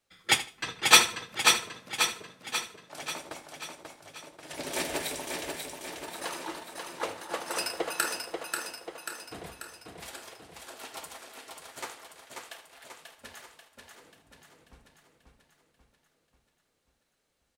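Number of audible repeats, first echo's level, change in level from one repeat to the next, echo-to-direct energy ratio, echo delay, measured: 12, -15.5 dB, no steady repeat, -2.5 dB, 78 ms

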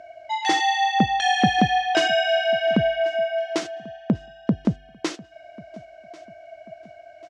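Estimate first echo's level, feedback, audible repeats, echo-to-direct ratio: -22.0 dB, 39%, 2, -21.5 dB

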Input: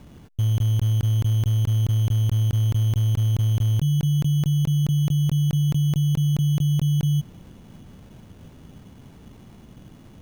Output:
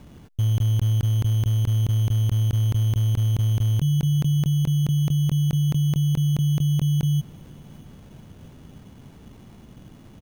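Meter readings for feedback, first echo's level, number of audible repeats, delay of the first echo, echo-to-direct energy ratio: 41%, -24.0 dB, 2, 0.666 s, -23.0 dB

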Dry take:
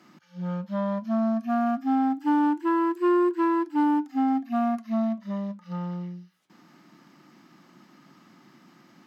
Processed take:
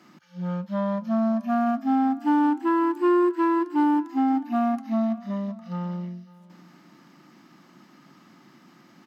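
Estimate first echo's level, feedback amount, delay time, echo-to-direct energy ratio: -21.0 dB, 23%, 0.552 s, -21.0 dB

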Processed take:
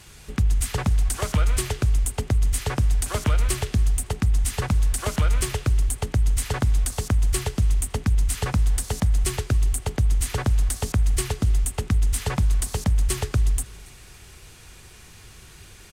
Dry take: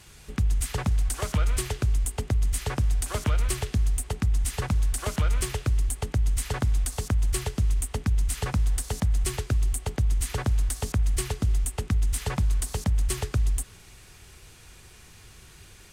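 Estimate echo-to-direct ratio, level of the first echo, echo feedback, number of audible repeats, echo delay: -23.5 dB, -24.0 dB, 39%, 2, 0.28 s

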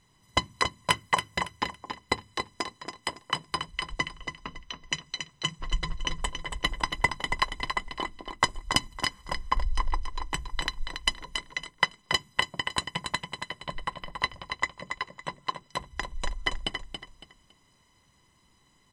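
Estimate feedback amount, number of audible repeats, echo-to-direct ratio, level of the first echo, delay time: 27%, 3, -6.5 dB, -7.0 dB, 0.279 s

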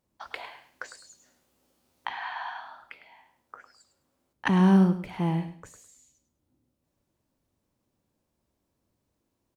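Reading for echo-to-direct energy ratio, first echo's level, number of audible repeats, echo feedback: -12.0 dB, -12.0 dB, 2, 23%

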